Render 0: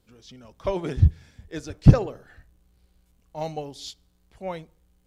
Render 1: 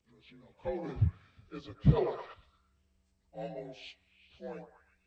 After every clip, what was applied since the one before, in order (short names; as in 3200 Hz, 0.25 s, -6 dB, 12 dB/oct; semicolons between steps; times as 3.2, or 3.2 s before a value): inharmonic rescaling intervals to 86%; delay with a stepping band-pass 0.119 s, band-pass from 750 Hz, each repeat 0.7 oct, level -5.5 dB; spectral gain 1.97–2.34, 330–5900 Hz +10 dB; gain -8.5 dB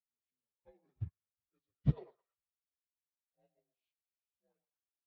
upward expander 2.5:1, over -45 dBFS; gain -5 dB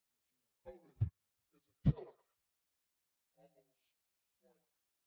compressor 2.5:1, threshold -43 dBFS, peak gain reduction 13.5 dB; gain +9.5 dB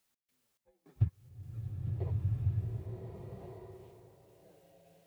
step gate "x.xx..xx" 105 bpm -24 dB; bloom reverb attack 1.47 s, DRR -4 dB; gain +7.5 dB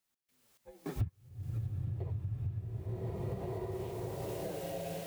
recorder AGC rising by 33 dB/s; gain -7 dB